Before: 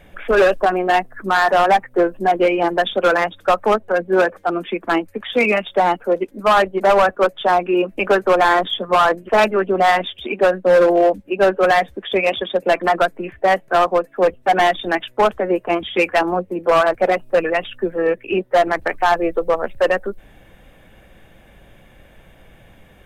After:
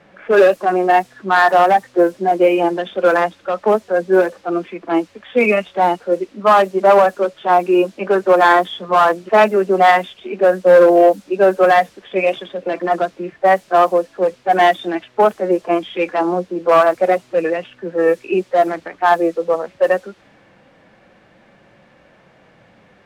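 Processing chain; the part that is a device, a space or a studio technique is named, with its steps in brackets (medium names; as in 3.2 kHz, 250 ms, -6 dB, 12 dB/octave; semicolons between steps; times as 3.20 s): high-pass 170 Hz; harmonic-percussive split percussive -14 dB; cassette deck with a dynamic noise filter (white noise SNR 32 dB; level-controlled noise filter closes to 1.9 kHz, open at -12.5 dBFS); trim +4 dB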